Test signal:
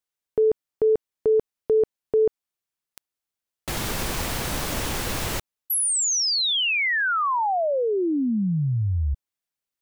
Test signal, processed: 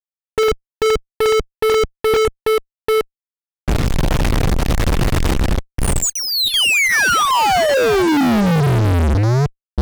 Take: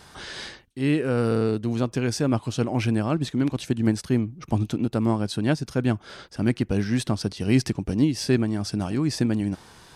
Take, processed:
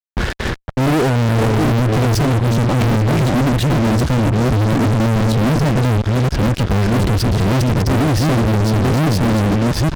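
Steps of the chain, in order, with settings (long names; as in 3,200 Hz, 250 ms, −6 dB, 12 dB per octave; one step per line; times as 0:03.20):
delay that plays each chunk backwards 430 ms, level −5 dB
square-wave tremolo 2.6 Hz, depth 60%, duty 85%
RIAA equalisation playback
noise gate −35 dBFS, range −14 dB
dynamic equaliser 1,200 Hz, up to −4 dB, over −41 dBFS, Q 2.8
in parallel at −3 dB: brickwall limiter −10 dBFS
on the sum: low-pass that shuts in the quiet parts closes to 2,100 Hz, open at −9.5 dBFS
fuzz pedal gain 33 dB, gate −36 dBFS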